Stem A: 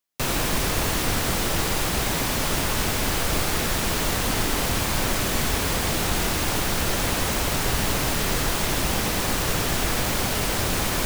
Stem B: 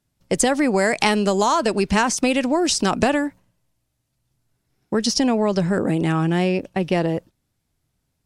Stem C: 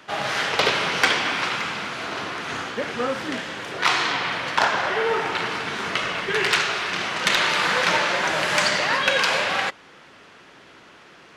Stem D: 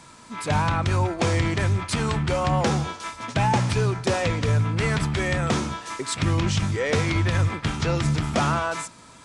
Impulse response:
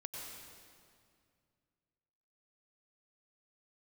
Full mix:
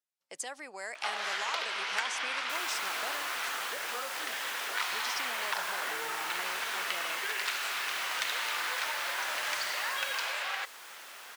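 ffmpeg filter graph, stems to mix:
-filter_complex "[0:a]adelay=2300,volume=-14.5dB,afade=type=out:start_time=10.08:duration=0.32:silence=0.354813[link_01];[1:a]volume=-17dB[link_02];[2:a]acompressor=threshold=-30dB:ratio=6,adelay=950,volume=-1dB[link_03];[3:a]alimiter=limit=-18.5dB:level=0:latency=1,adelay=1550,volume=-17.5dB[link_04];[link_01][link_02][link_03][link_04]amix=inputs=4:normalize=0,highpass=840"

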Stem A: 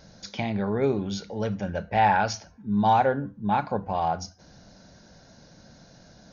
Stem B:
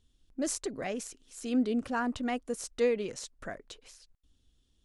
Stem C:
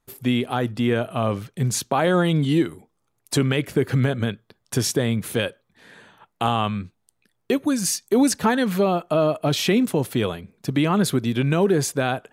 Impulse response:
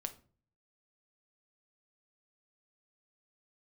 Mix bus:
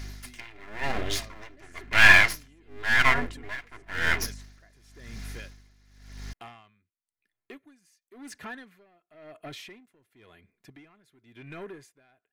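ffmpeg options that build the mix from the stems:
-filter_complex "[0:a]aeval=exprs='abs(val(0))':channel_layout=same,aeval=exprs='val(0)+0.0141*(sin(2*PI*50*n/s)+sin(2*PI*2*50*n/s)/2+sin(2*PI*3*50*n/s)/3+sin(2*PI*4*50*n/s)/4+sin(2*PI*5*50*n/s)/5)':channel_layout=same,highshelf=frequency=2200:gain=11,volume=-0.5dB[link_01];[1:a]adelay=1150,volume=-3.5dB[link_02];[2:a]asoftclip=type=tanh:threshold=-16dB,volume=-18.5dB,asplit=2[link_03][link_04];[link_04]apad=whole_len=264365[link_05];[link_02][link_05]sidechaincompress=threshold=-44dB:ratio=8:attack=16:release=862[link_06];[link_01][link_06][link_03]amix=inputs=3:normalize=0,equalizer=frequency=2000:width_type=o:width=0.93:gain=12,aecho=1:1:2.9:0.35,aeval=exprs='val(0)*pow(10,-23*(0.5-0.5*cos(2*PI*0.95*n/s))/20)':channel_layout=same"

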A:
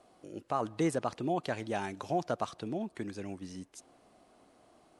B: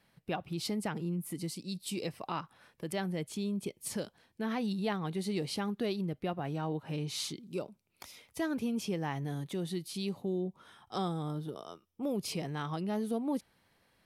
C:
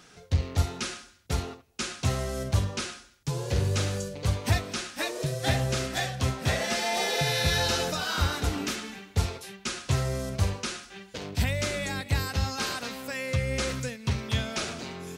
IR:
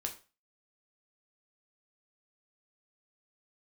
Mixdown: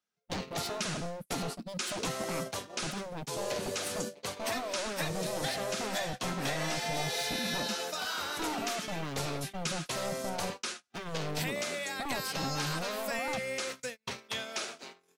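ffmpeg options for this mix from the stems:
-filter_complex "[0:a]lowpass=frequency=580:width_type=q:width=3.5,adelay=1400,volume=-17dB[link_01];[1:a]equalizer=frequency=220:width=1.5:gain=14.5,alimiter=limit=-22.5dB:level=0:latency=1:release=54,aeval=exprs='0.0282*(abs(mod(val(0)/0.0282+3,4)-2)-1)':channel_layout=same,volume=-1.5dB,asplit=3[link_02][link_03][link_04];[link_03]volume=-19.5dB[link_05];[2:a]highpass=390,highshelf=frequency=11000:gain=4,acompressor=threshold=-34dB:ratio=5,volume=0.5dB,asplit=2[link_06][link_07];[link_07]volume=-18dB[link_08];[link_04]apad=whole_len=282216[link_09];[link_01][link_09]sidechaincompress=threshold=-45dB:ratio=8:attack=16:release=247[link_10];[3:a]atrim=start_sample=2205[link_11];[link_05][link_08]amix=inputs=2:normalize=0[link_12];[link_12][link_11]afir=irnorm=-1:irlink=0[link_13];[link_10][link_02][link_06][link_13]amix=inputs=4:normalize=0,agate=range=-37dB:threshold=-37dB:ratio=16:detection=peak"

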